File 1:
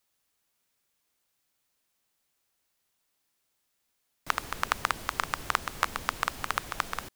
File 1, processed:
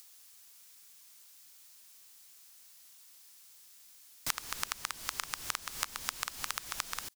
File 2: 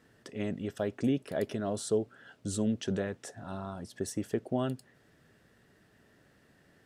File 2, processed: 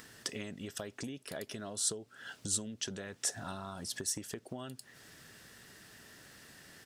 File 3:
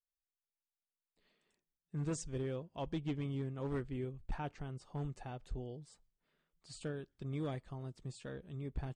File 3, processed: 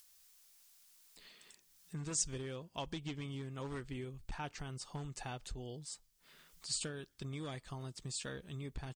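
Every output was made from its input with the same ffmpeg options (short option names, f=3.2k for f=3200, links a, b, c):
-af "acompressor=threshold=-40dB:ratio=20,firequalizer=gain_entry='entry(590,0);entry(980,5);entry(5200,15)':delay=0.05:min_phase=1,acompressor=mode=upward:threshold=-51dB:ratio=2.5,volume=1dB"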